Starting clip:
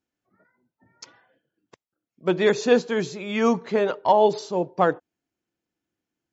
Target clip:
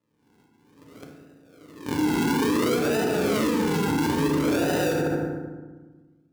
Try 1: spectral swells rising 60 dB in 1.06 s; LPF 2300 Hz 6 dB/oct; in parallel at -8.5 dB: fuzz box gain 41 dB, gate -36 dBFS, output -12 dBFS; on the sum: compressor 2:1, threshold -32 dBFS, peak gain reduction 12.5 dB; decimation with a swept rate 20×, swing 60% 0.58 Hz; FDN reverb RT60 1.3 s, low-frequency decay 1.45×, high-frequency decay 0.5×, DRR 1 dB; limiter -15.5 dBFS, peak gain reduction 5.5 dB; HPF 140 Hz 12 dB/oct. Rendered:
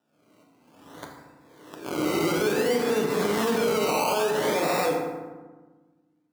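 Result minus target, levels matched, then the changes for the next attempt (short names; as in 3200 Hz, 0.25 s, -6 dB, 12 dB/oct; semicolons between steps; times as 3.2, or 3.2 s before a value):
decimation with a swept rate: distortion -26 dB; compressor: peak gain reduction +12.5 dB
change: decimation with a swept rate 57×, swing 60% 0.58 Hz; remove: compressor 2:1, threshold -32 dBFS, peak gain reduction 12.5 dB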